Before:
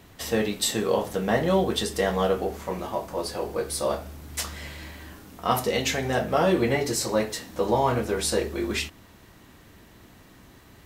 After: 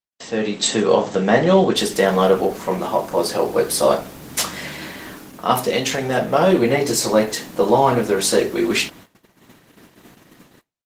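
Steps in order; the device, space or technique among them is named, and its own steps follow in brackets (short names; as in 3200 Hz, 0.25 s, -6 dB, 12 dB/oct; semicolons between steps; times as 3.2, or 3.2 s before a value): 5.89–7.16 dynamic EQ 1900 Hz, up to -3 dB, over -43 dBFS, Q 6.9; video call (HPF 130 Hz 24 dB/oct; AGC gain up to 12 dB; gate -39 dBFS, range -50 dB; Opus 16 kbps 48000 Hz)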